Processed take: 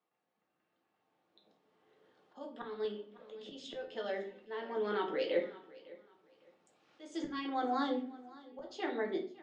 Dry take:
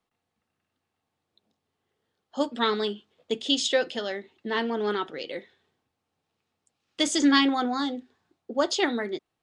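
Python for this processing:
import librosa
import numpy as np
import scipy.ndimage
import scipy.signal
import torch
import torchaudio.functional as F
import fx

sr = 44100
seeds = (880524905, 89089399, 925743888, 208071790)

y = fx.recorder_agc(x, sr, target_db=-14.5, rise_db_per_s=6.4, max_gain_db=30)
y = scipy.signal.sosfilt(scipy.signal.butter(2, 250.0, 'highpass', fs=sr, output='sos'), y)
y = fx.high_shelf(y, sr, hz=2500.0, db=-9.5)
y = fx.hum_notches(y, sr, base_hz=60, count=9)
y = fx.auto_swell(y, sr, attack_ms=687.0)
y = fx.air_absorb(y, sr, metres=68.0)
y = fx.echo_feedback(y, sr, ms=556, feedback_pct=25, wet_db=-20.5)
y = fx.room_shoebox(y, sr, seeds[0], volume_m3=34.0, walls='mixed', distance_m=0.54)
y = fx.band_squash(y, sr, depth_pct=40, at=(2.85, 5.14))
y = y * librosa.db_to_amplitude(-3.5)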